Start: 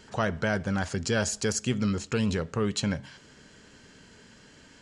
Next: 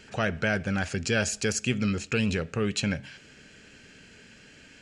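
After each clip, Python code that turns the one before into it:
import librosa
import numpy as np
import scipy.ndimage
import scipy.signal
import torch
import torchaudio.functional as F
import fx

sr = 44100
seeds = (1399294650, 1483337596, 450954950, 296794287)

y = fx.graphic_eq_31(x, sr, hz=(1000, 1600, 2500), db=(-9, 3, 11))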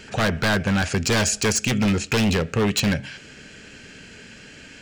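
y = 10.0 ** (-22.5 / 20.0) * (np.abs((x / 10.0 ** (-22.5 / 20.0) + 3.0) % 4.0 - 2.0) - 1.0)
y = y * librosa.db_to_amplitude(8.5)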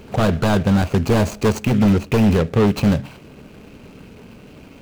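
y = scipy.ndimage.median_filter(x, 25, mode='constant')
y = y * librosa.db_to_amplitude(6.0)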